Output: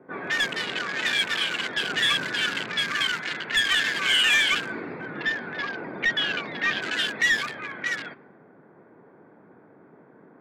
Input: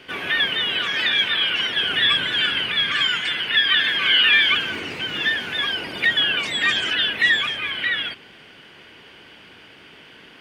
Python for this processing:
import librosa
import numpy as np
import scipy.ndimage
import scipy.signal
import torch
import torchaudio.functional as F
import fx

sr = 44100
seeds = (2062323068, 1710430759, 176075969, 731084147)

y = fx.wiener(x, sr, points=15)
y = scipy.signal.sosfilt(scipy.signal.butter(4, 130.0, 'highpass', fs=sr, output='sos'), y)
y = 10.0 ** (-15.0 / 20.0) * np.tanh(y / 10.0 ** (-15.0 / 20.0))
y = fx.moving_average(y, sr, points=5, at=(5.1, 6.82))
y = fx.env_lowpass(y, sr, base_hz=850.0, full_db=-23.0)